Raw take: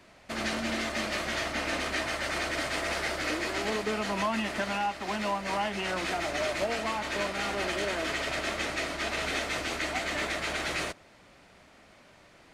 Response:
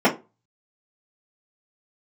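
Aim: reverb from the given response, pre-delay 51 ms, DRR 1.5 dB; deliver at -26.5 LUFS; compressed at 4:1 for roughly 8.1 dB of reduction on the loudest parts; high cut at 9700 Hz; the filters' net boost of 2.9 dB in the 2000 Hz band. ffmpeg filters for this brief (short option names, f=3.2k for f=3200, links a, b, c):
-filter_complex "[0:a]lowpass=9.7k,equalizer=f=2k:t=o:g=3.5,acompressor=threshold=-35dB:ratio=4,asplit=2[a][b];[1:a]atrim=start_sample=2205,adelay=51[c];[b][c]afir=irnorm=-1:irlink=0,volume=-22dB[d];[a][d]amix=inputs=2:normalize=0,volume=7dB"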